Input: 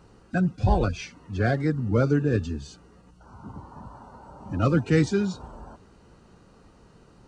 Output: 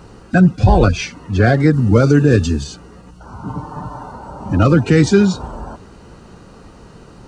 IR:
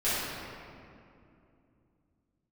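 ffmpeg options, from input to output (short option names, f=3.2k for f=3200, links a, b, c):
-filter_complex "[0:a]asettb=1/sr,asplit=3[a][b][c];[a]atrim=end=1.734[d];[b]atrim=start=1.73:end=2.64,asetpts=PTS-STARTPTS,afade=t=in:d=0.004:c=qsin,afade=t=out:st=0.906:d=0.004:c=qsin,highshelf=f=5k:g=10[e];[c]atrim=start=2.636[f];[d][e]acrossfade=d=0.004:c1=hsin:c2=qsin[g];[g][f]acrossfade=d=0.004:c1=qsin:c2=hsin,asettb=1/sr,asplit=3[h][i][j];[h]atrim=end=3.464[k];[i]atrim=start=3.46:end=4.12,asetpts=PTS-STARTPTS,afade=t=in:d=0.004:c=qsin,afade=t=out:st=0.656:d=0.004:c=qsin,aecho=1:1:6.7:0.64,atrim=end_sample=29106[l];[j]atrim=start=4.116[m];[k][l]acrossfade=d=0.004:c1=hsin:c2=qsin[n];[n][m]acrossfade=d=0.004:c1=qsin:c2=hsin,alimiter=level_in=14.5dB:limit=-1dB:release=50:level=0:latency=1,volume=-1dB"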